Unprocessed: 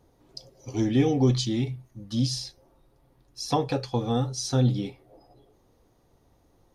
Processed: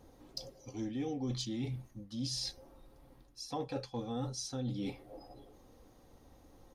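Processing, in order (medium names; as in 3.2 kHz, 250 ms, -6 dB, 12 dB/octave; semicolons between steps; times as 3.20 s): comb 3.8 ms, depth 34%; reverse; compression 6:1, threshold -39 dBFS, peak gain reduction 20.5 dB; reverse; hard clipper -30.5 dBFS, distortion -35 dB; trim +2.5 dB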